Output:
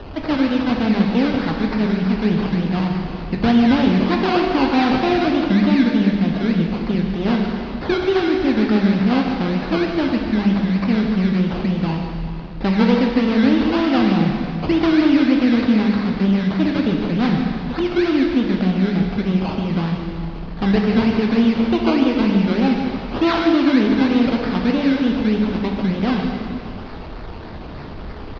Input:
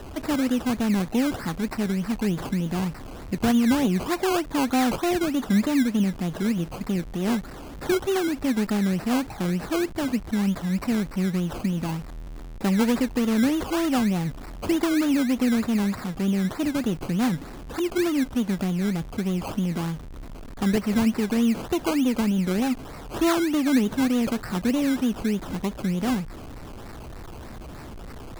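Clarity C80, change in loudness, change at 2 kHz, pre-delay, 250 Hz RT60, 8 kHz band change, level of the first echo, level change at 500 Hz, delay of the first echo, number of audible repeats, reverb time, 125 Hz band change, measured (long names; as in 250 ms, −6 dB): 3.0 dB, +6.5 dB, +7.0 dB, 4 ms, 2.3 s, below −10 dB, −11.5 dB, +7.0 dB, 151 ms, 1, 2.3 s, +7.0 dB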